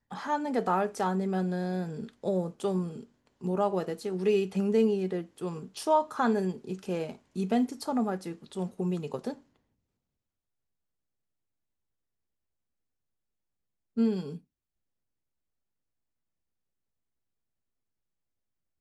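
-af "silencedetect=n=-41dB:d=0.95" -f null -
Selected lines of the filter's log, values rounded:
silence_start: 9.34
silence_end: 13.97 | silence_duration: 4.63
silence_start: 14.37
silence_end: 18.80 | silence_duration: 4.43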